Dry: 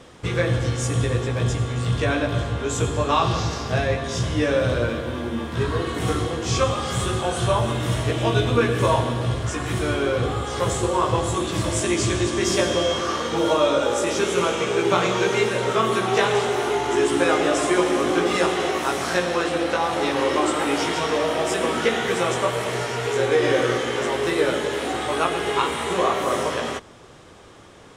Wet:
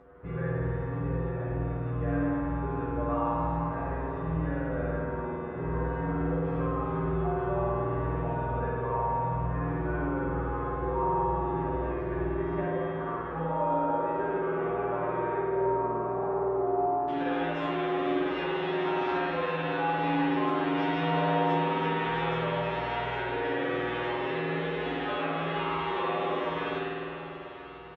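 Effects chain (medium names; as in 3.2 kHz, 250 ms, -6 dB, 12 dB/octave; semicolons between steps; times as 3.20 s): low-pass 1.6 kHz 24 dB/octave, from 15.36 s 1 kHz, from 17.08 s 3.3 kHz; feedback delay 989 ms, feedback 55%, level -17.5 dB; compression, threshold -21 dBFS, peak gain reduction 8 dB; spring tank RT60 2.6 s, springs 49 ms, chirp 35 ms, DRR -6 dB; upward compressor, threshold -44 dBFS; feedback comb 55 Hz, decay 0.22 s, harmonics odd, mix 100%; trim -2 dB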